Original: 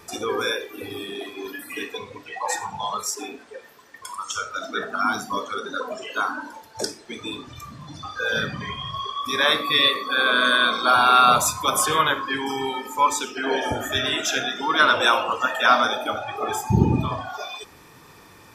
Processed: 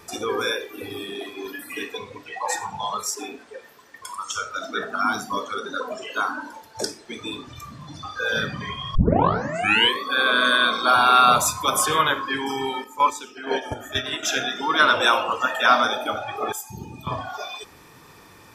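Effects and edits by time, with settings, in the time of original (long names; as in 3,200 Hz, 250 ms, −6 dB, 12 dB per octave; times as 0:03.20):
0:08.95: tape start 1.06 s
0:12.84–0:14.23: noise gate −24 dBFS, range −9 dB
0:16.52–0:17.07: first-order pre-emphasis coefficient 0.9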